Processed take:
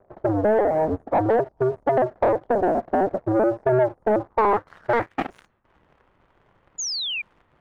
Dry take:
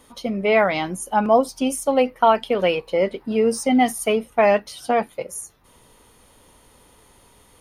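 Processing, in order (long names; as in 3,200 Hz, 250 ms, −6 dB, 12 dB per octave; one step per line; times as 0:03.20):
sub-harmonics by changed cycles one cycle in 2, inverted
noise gate with hold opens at −49 dBFS
low-pass filter sweep 640 Hz → 2,800 Hz, 0:04.03–0:05.22
downward compressor 3 to 1, threshold −19 dBFS, peak gain reduction 9.5 dB
leveller curve on the samples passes 2
high shelf with overshoot 2,100 Hz −6.5 dB, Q 1.5
sound drawn into the spectrogram fall, 0:06.78–0:07.22, 2,300–7,100 Hz −23 dBFS
one half of a high-frequency compander decoder only
level −4.5 dB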